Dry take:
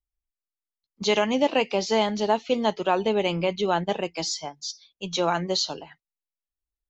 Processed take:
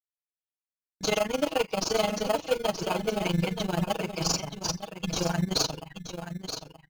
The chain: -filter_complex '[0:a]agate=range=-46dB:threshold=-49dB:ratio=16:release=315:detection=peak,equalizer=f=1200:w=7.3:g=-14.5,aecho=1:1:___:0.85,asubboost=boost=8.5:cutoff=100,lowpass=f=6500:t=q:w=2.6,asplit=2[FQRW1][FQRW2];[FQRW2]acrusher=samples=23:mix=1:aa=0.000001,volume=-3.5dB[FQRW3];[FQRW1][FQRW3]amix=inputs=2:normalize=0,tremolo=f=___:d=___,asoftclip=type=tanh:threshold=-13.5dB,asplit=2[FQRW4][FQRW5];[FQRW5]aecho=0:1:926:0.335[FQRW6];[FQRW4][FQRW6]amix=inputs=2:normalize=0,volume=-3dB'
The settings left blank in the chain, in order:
6.3, 23, 0.919